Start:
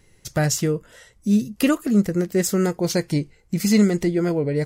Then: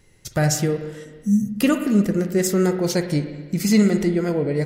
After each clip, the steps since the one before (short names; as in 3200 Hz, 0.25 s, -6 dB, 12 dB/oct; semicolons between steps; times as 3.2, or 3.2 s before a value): spectral repair 1.07–1.48, 240–5600 Hz after; spring tank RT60 1.4 s, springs 46/54 ms, chirp 20 ms, DRR 7 dB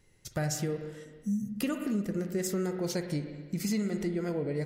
compressor, threshold -18 dBFS, peak gain reduction 7.5 dB; gain -9 dB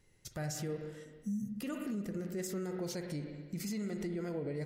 limiter -27 dBFS, peak gain reduction 7.5 dB; gain -3.5 dB